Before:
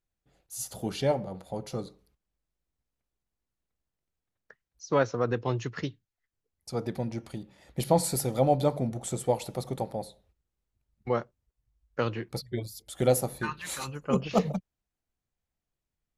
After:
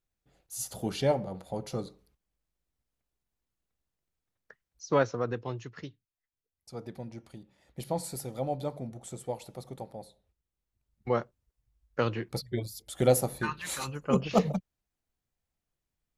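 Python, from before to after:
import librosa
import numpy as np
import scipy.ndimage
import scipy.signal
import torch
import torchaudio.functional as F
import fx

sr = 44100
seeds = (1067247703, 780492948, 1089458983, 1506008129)

y = fx.gain(x, sr, db=fx.line((4.95, 0.0), (5.66, -9.0), (9.96, -9.0), (11.21, 0.5)))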